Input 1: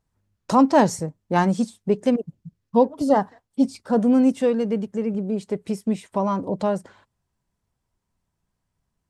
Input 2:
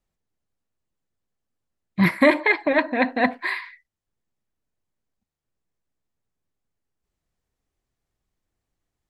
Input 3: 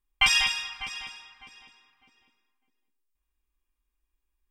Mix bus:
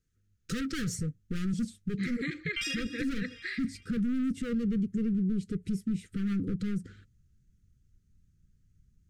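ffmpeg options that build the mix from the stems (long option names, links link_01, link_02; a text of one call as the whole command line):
ffmpeg -i stem1.wav -i stem2.wav -i stem3.wav -filter_complex "[0:a]volume=24.5dB,asoftclip=hard,volume=-24.5dB,asubboost=boost=9:cutoff=190,volume=-4dB,asplit=2[link_01][link_02];[1:a]lowpass=frequency=6500:width_type=q:width=7.3,volume=-11.5dB[link_03];[2:a]adelay=2350,volume=-2dB[link_04];[link_02]apad=whole_len=302321[link_05];[link_04][link_05]sidechaincompress=threshold=-33dB:ratio=10:attack=16:release=907[link_06];[link_01][link_03][link_06]amix=inputs=3:normalize=0,asuperstop=centerf=790:order=20:qfactor=1.1,alimiter=limit=-24dB:level=0:latency=1:release=152" out.wav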